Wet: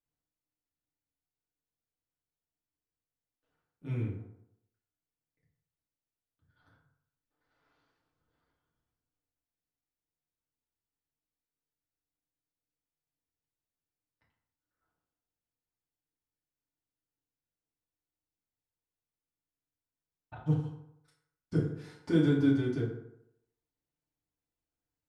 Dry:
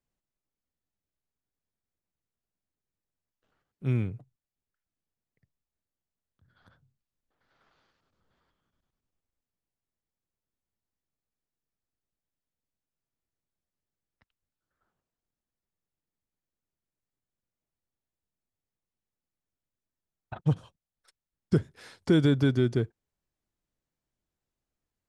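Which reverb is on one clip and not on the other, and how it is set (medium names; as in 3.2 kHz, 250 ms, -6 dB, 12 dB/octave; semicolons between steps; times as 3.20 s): FDN reverb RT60 0.77 s, low-frequency decay 0.9×, high-frequency decay 0.55×, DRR -5.5 dB; trim -12 dB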